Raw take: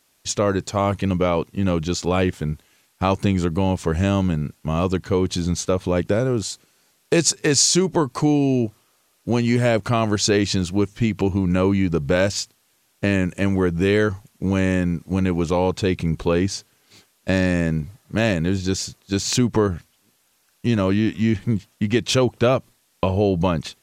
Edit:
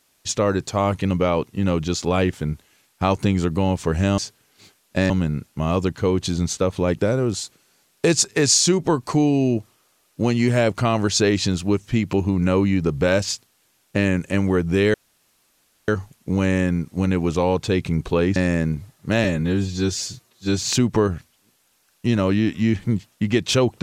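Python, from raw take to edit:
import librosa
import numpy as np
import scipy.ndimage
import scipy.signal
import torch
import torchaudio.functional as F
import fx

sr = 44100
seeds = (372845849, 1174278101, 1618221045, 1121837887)

y = fx.edit(x, sr, fx.insert_room_tone(at_s=14.02, length_s=0.94),
    fx.move(start_s=16.5, length_s=0.92, to_s=4.18),
    fx.stretch_span(start_s=18.3, length_s=0.92, factor=1.5), tone=tone)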